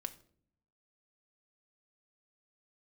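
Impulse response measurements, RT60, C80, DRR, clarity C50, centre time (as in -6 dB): 0.55 s, 20.0 dB, 7.5 dB, 16.0 dB, 4 ms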